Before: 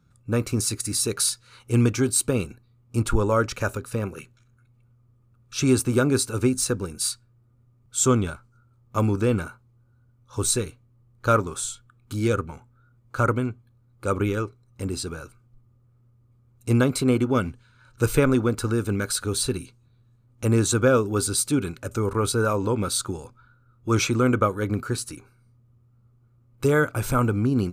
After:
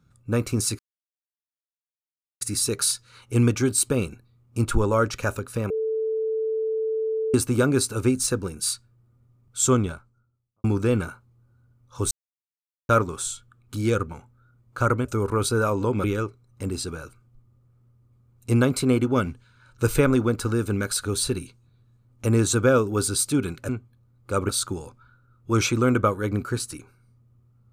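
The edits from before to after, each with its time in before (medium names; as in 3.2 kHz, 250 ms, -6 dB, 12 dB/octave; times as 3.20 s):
0.79 s: insert silence 1.62 s
4.08–5.72 s: bleep 441 Hz -22.5 dBFS
8.02–9.02 s: studio fade out
10.49–11.27 s: mute
13.43–14.23 s: swap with 21.88–22.87 s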